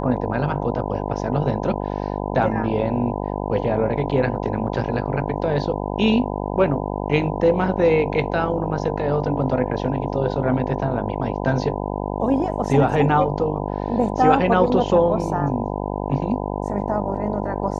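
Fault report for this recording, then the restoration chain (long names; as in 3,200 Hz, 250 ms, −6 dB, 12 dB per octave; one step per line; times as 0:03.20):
mains buzz 50 Hz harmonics 20 −26 dBFS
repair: hum removal 50 Hz, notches 20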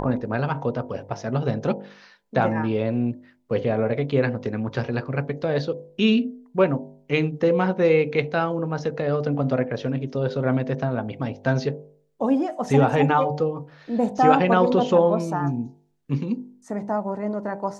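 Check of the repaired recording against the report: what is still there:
none of them is left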